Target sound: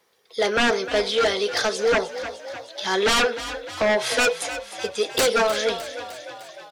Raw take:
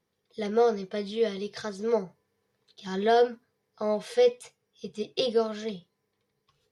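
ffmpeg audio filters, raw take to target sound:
-filter_complex "[0:a]acrossover=split=410[a][b];[a]acompressor=threshold=-43dB:ratio=6[c];[b]aeval=exprs='0.211*sin(PI/2*5.62*val(0)/0.211)':c=same[d];[c][d]amix=inputs=2:normalize=0,asplit=8[e][f][g][h][i][j][k][l];[f]adelay=304,afreqshift=39,volume=-12.5dB[m];[g]adelay=608,afreqshift=78,volume=-16.7dB[n];[h]adelay=912,afreqshift=117,volume=-20.8dB[o];[i]adelay=1216,afreqshift=156,volume=-25dB[p];[j]adelay=1520,afreqshift=195,volume=-29.1dB[q];[k]adelay=1824,afreqshift=234,volume=-33.3dB[r];[l]adelay=2128,afreqshift=273,volume=-37.4dB[s];[e][m][n][o][p][q][r][s]amix=inputs=8:normalize=0,volume=-2dB"

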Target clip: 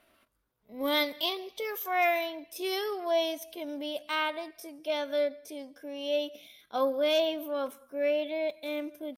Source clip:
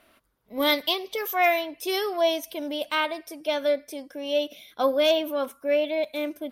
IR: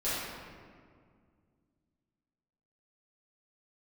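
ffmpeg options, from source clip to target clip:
-filter_complex "[0:a]atempo=0.71,asplit=2[a][b];[1:a]atrim=start_sample=2205,atrim=end_sample=3528,adelay=134[c];[b][c]afir=irnorm=-1:irlink=0,volume=-31.5dB[d];[a][d]amix=inputs=2:normalize=0,volume=-5.5dB"

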